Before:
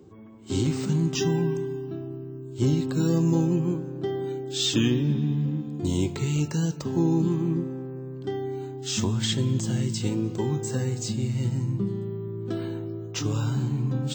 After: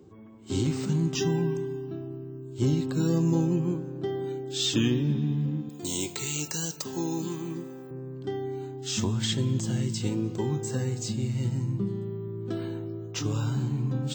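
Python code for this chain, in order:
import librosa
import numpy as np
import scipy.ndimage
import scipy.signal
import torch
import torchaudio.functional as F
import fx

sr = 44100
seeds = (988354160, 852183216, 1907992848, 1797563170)

y = fx.riaa(x, sr, side='recording', at=(5.69, 7.91))
y = F.gain(torch.from_numpy(y), -2.0).numpy()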